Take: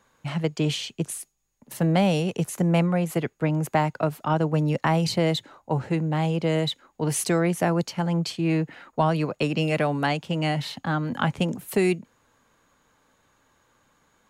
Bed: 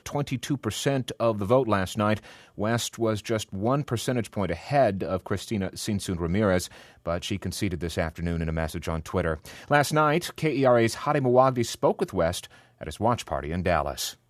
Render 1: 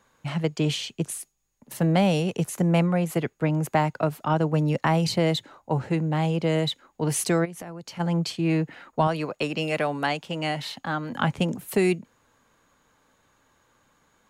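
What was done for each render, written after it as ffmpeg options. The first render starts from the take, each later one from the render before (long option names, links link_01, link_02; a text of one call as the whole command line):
ffmpeg -i in.wav -filter_complex "[0:a]asplit=3[link_01][link_02][link_03];[link_01]afade=type=out:start_time=7.44:duration=0.02[link_04];[link_02]acompressor=threshold=-34dB:ratio=10:attack=3.2:release=140:knee=1:detection=peak,afade=type=in:start_time=7.44:duration=0.02,afade=type=out:start_time=7.99:duration=0.02[link_05];[link_03]afade=type=in:start_time=7.99:duration=0.02[link_06];[link_04][link_05][link_06]amix=inputs=3:normalize=0,asettb=1/sr,asplit=3[link_07][link_08][link_09];[link_07]atrim=end=9.074[link_10];[link_08]atrim=start=9.07:end=11.14,asetpts=PTS-STARTPTS,afade=type=in:duration=0.004:curve=qsin,afade=type=out:start_time=2.066:duration=0.004:curve=qsin,equalizer=frequency=95:width_type=o:width=2.9:gain=-8.5[link_11];[link_09]atrim=start=11.136[link_12];[link_10][link_11]acrossfade=duration=0.004:curve1=hsin:curve2=qsin[link_13];[link_13][link_12]acrossfade=duration=0.004:curve1=qsin:curve2=hsin" out.wav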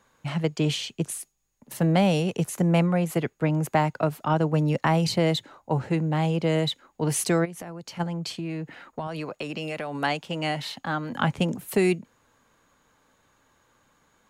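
ffmpeg -i in.wav -filter_complex "[0:a]asettb=1/sr,asplit=3[link_01][link_02][link_03];[link_01]atrim=end=8.034[link_04];[link_02]atrim=start=8.03:end=9.95,asetpts=PTS-STARTPTS,afade=type=in:duration=0.004:curve=qsin,afade=type=out:start_time=1.916:duration=0.004:curve=qsin,acompressor=threshold=-28dB:ratio=6:attack=3.2:release=140:knee=1:detection=peak[link_05];[link_03]atrim=start=9.946[link_06];[link_04][link_05]acrossfade=duration=0.004:curve1=hsin:curve2=qsin[link_07];[link_07][link_06]acrossfade=duration=0.004:curve1=qsin:curve2=hsin" out.wav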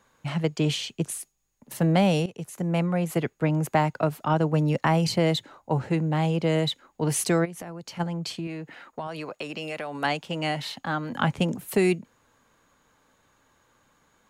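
ffmpeg -i in.wav -filter_complex "[0:a]asettb=1/sr,asplit=3[link_01][link_02][link_03];[link_01]atrim=end=4.854[link_04];[link_02]atrim=start=4.85:end=5.25,asetpts=PTS-STARTPTS,afade=type=in:duration=0.004:curve=qsin,afade=type=out:start_time=0.396:duration=0.004:curve=qsin,bandreject=frequency=3800:width=12[link_05];[link_03]atrim=start=5.246[link_06];[link_04][link_05]acrossfade=duration=0.004:curve1=hsin:curve2=qsin[link_07];[link_07][link_06]acrossfade=duration=0.004:curve1=qsin:curve2=hsin,asettb=1/sr,asplit=3[link_08][link_09][link_10];[link_08]atrim=end=8.474[link_11];[link_09]atrim=start=8.47:end=10.05,asetpts=PTS-STARTPTS,afade=type=in:duration=0.004:curve=qsin,afade=type=out:start_time=1.576:duration=0.004:curve=qsin,lowshelf=frequency=230:gain=-7.5[link_12];[link_10]atrim=start=10.046[link_13];[link_11][link_12]acrossfade=duration=0.004:curve1=hsin:curve2=qsin[link_14];[link_14][link_13]acrossfade=duration=0.004:curve1=qsin:curve2=hsin,asplit=2[link_15][link_16];[link_15]atrim=end=2.26,asetpts=PTS-STARTPTS,afade=type=out:start_time=2.256:duration=0.004:curve=hsin:silence=0.188365[link_17];[link_16]atrim=start=2.26,asetpts=PTS-STARTPTS,afade=type=in:duration=0.93:silence=0.188365[link_18];[link_17][link_18]concat=n=2:v=0:a=1" out.wav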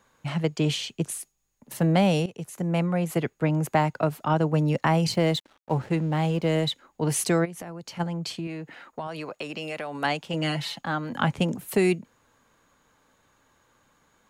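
ffmpeg -i in.wav -filter_complex "[0:a]asettb=1/sr,asplit=3[link_01][link_02][link_03];[link_01]atrim=end=5.124[link_04];[link_02]atrim=start=5.12:end=6.67,asetpts=PTS-STARTPTS,afade=type=in:duration=0.004:curve=qsin,afade=type=out:start_time=1.546:duration=0.004:curve=qsin,aeval=exprs='sgn(val(0))*max(abs(val(0))-0.00447,0)':channel_layout=same[link_05];[link_03]atrim=start=6.666[link_06];[link_04][link_05]acrossfade=duration=0.004:curve1=hsin:curve2=qsin[link_07];[link_07][link_06]acrossfade=duration=0.004:curve1=qsin:curve2=hsin,asettb=1/sr,asplit=3[link_08][link_09][link_10];[link_08]atrim=end=10.334[link_11];[link_09]atrim=start=10.33:end=10.82,asetpts=PTS-STARTPTS,afade=type=in:duration=0.004:curve=qsin,afade=type=out:start_time=0.486:duration=0.004:curve=qsin,aecho=1:1:5.9:0.65,atrim=end_sample=21609[link_12];[link_10]atrim=start=10.816[link_13];[link_11][link_12]acrossfade=duration=0.004:curve1=hsin:curve2=qsin[link_14];[link_14][link_13]acrossfade=duration=0.004:curve1=qsin:curve2=hsin" out.wav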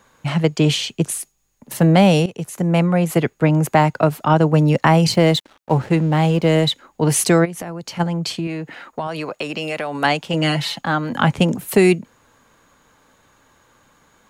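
ffmpeg -i in.wav -af "volume=8.5dB,alimiter=limit=-2dB:level=0:latency=1" out.wav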